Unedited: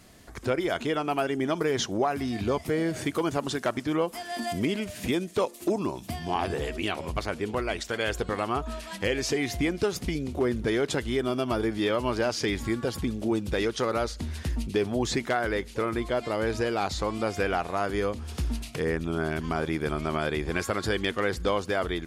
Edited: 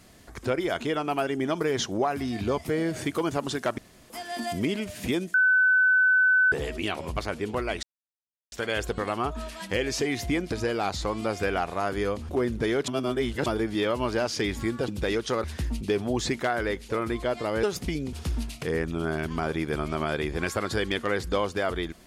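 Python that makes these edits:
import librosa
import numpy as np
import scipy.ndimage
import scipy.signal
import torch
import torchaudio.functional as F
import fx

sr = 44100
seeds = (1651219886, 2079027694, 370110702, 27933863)

y = fx.edit(x, sr, fx.room_tone_fill(start_s=3.78, length_s=0.32),
    fx.bleep(start_s=5.34, length_s=1.18, hz=1510.0, db=-17.0),
    fx.insert_silence(at_s=7.83, length_s=0.69),
    fx.swap(start_s=9.83, length_s=0.5, other_s=16.49, other_length_s=1.77),
    fx.reverse_span(start_s=10.92, length_s=0.58),
    fx.cut(start_s=12.92, length_s=0.46),
    fx.cut(start_s=13.94, length_s=0.36), tone=tone)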